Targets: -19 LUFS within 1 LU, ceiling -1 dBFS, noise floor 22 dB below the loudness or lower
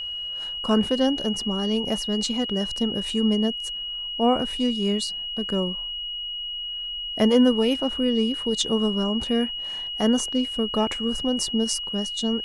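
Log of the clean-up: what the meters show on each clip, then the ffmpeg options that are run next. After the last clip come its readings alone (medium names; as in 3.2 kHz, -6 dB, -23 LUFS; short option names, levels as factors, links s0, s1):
steady tone 2.9 kHz; tone level -29 dBFS; loudness -24.0 LUFS; peak level -7.0 dBFS; loudness target -19.0 LUFS
-> -af "bandreject=f=2900:w=30"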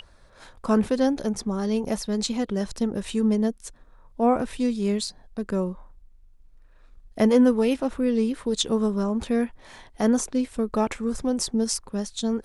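steady tone not found; loudness -25.0 LUFS; peak level -7.5 dBFS; loudness target -19.0 LUFS
-> -af "volume=2"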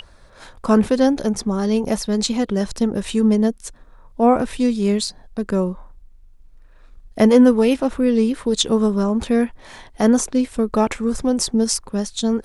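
loudness -19.0 LUFS; peak level -1.5 dBFS; noise floor -48 dBFS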